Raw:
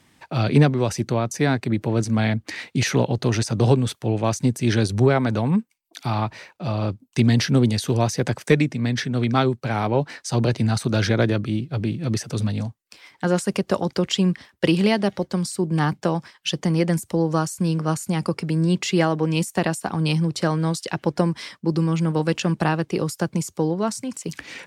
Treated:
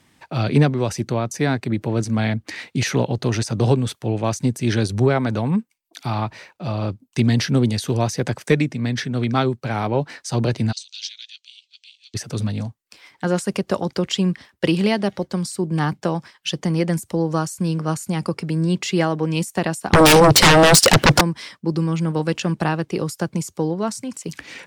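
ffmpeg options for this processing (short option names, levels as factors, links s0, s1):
-filter_complex "[0:a]asplit=3[s0][s1][s2];[s0]afade=t=out:st=10.71:d=0.02[s3];[s1]asuperpass=centerf=4800:order=8:qfactor=0.99,afade=t=in:st=10.71:d=0.02,afade=t=out:st=12.14:d=0.02[s4];[s2]afade=t=in:st=12.14:d=0.02[s5];[s3][s4][s5]amix=inputs=3:normalize=0,asettb=1/sr,asplit=3[s6][s7][s8];[s6]atrim=end=19.934[s9];[s7]atrim=start=19.93:end=21.21,asetpts=PTS-STARTPTS,afade=t=in:d=0.004:c=qsin,afade=t=out:st=1.276:d=0.004:c=qsin,aeval=exprs='0.447*sin(PI/2*8.91*val(0)/0.447)':c=same[s10];[s8]atrim=start=21.206[s11];[s9][s10]acrossfade=d=0.004:c1=hsin:c2=qsin[s12];[s12][s11]acrossfade=d=0.004:c1=qsin:c2=hsin"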